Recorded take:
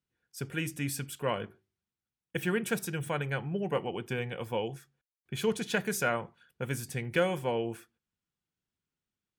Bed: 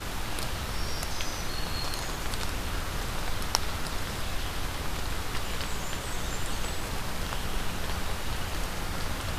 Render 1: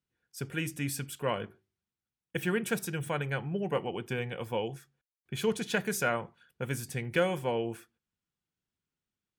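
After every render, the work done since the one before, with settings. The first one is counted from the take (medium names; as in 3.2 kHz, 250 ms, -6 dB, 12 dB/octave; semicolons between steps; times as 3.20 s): no audible change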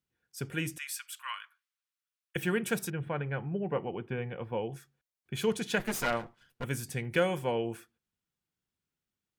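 0.78–2.36 s: elliptic high-pass 1.1 kHz, stop band 70 dB; 2.90–4.72 s: distance through air 480 m; 5.79–6.64 s: comb filter that takes the minimum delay 8.5 ms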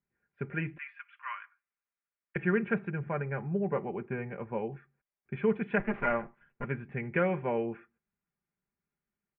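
steep low-pass 2.4 kHz 48 dB/octave; comb 5 ms, depth 46%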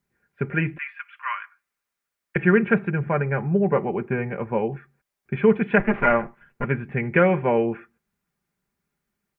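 trim +10.5 dB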